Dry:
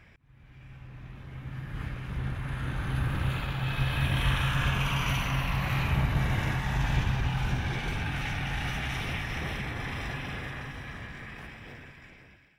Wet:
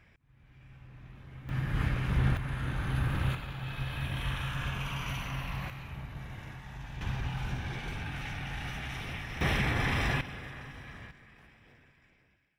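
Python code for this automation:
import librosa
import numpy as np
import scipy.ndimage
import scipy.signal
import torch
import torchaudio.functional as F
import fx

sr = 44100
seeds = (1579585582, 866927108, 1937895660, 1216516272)

y = fx.gain(x, sr, db=fx.steps((0.0, -5.5), (1.49, 6.0), (2.37, -1.0), (3.35, -7.5), (5.7, -15.5), (7.01, -6.0), (9.41, 5.5), (10.21, -6.0), (11.11, -14.0)))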